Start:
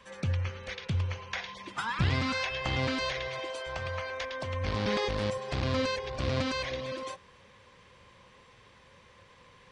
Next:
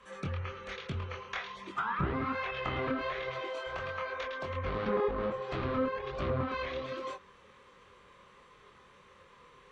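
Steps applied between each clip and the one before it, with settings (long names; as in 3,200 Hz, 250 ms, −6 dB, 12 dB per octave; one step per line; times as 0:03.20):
multi-voice chorus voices 2, 1.2 Hz, delay 24 ms, depth 3.5 ms
thirty-one-band graphic EQ 100 Hz −9 dB, 400 Hz +8 dB, 1,250 Hz +10 dB, 5,000 Hz −6 dB
treble cut that deepens with the level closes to 1,400 Hz, closed at −27.5 dBFS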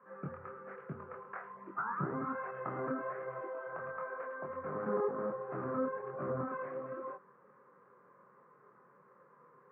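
elliptic band-pass filter 140–1,500 Hz, stop band 40 dB
level −3 dB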